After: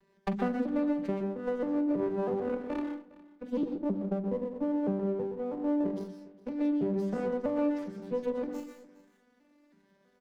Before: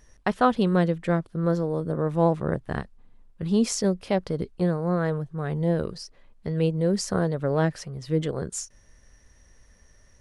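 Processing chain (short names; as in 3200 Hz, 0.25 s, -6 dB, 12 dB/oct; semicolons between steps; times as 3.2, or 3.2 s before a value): arpeggiated vocoder major triad, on G3, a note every 0.324 s; 3.63–5.85 Chebyshev low-pass 1000 Hz, order 10; notches 50/100/150/200/250/300 Hz; compressor 10:1, threshold -28 dBFS, peak gain reduction 13.5 dB; doubler 44 ms -12.5 dB; echo 0.409 s -20.5 dB; reverb RT60 0.35 s, pre-delay 0.113 s, DRR 5.5 dB; running maximum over 9 samples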